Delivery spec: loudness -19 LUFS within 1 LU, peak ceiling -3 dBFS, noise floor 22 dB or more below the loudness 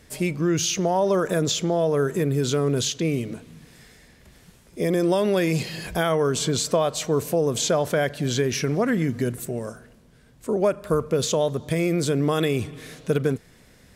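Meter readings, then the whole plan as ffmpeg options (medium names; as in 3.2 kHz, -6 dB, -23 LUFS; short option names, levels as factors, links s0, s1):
loudness -23.5 LUFS; peak level -10.0 dBFS; loudness target -19.0 LUFS
-> -af "volume=1.68"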